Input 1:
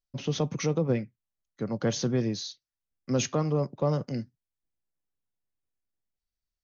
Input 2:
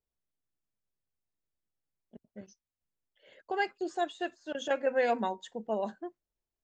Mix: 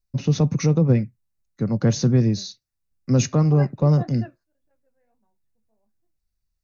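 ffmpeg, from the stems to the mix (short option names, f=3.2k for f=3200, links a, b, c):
-filter_complex "[0:a]volume=2.5dB,asplit=2[a][b];[1:a]lowpass=2k,flanger=delay=9.5:depth=8.6:regen=-47:speed=1.7:shape=sinusoidal,volume=-2dB[c];[b]apad=whole_len=292422[d];[c][d]sidechaingate=range=-38dB:threshold=-57dB:ratio=16:detection=peak[e];[a][e]amix=inputs=2:normalize=0,bass=f=250:g=11,treble=f=4k:g=2,bandreject=f=3.2k:w=5.4"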